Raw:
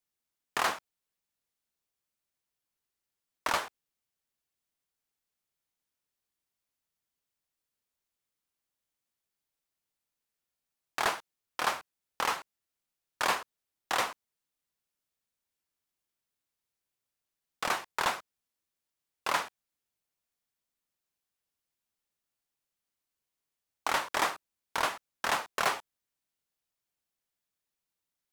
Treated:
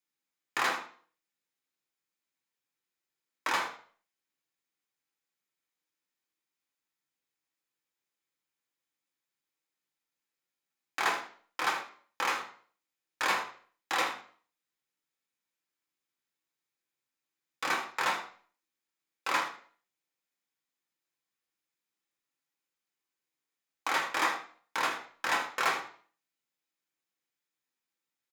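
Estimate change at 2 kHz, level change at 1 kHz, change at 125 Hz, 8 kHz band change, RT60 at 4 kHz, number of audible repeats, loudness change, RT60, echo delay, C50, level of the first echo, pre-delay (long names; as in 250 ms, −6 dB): +2.0 dB, 0.0 dB, can't be measured, −2.0 dB, 0.40 s, 1, +0.5 dB, 0.45 s, 79 ms, 9.0 dB, −13.0 dB, 3 ms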